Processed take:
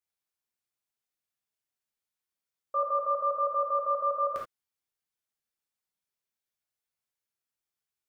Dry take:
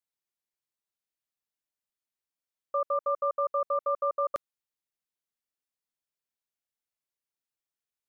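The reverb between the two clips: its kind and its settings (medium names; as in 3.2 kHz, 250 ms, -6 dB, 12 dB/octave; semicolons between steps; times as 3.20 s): gated-style reverb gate 100 ms flat, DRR -3 dB; trim -3.5 dB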